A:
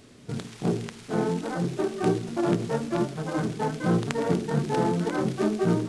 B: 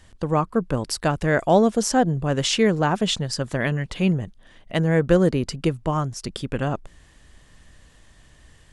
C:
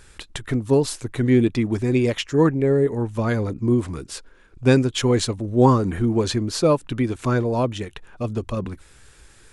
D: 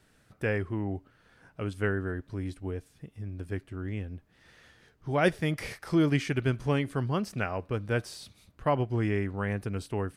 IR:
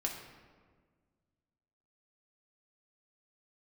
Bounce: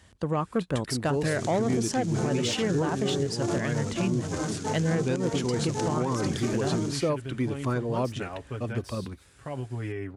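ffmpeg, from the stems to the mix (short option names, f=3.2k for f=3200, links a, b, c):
-filter_complex "[0:a]equalizer=f=6.6k:t=o:w=0.88:g=14.5,adelay=1050,volume=-3.5dB[a];[1:a]asoftclip=type=tanh:threshold=-12.5dB,volume=-2.5dB[b];[2:a]adelay=400,volume=-6.5dB[c];[3:a]aecho=1:1:7.3:0.63,alimiter=limit=-21dB:level=0:latency=1:release=37,adelay=800,volume=-5dB[d];[a][b][c][d]amix=inputs=4:normalize=0,highpass=f=53:w=0.5412,highpass=f=53:w=1.3066,alimiter=limit=-17.5dB:level=0:latency=1:release=188"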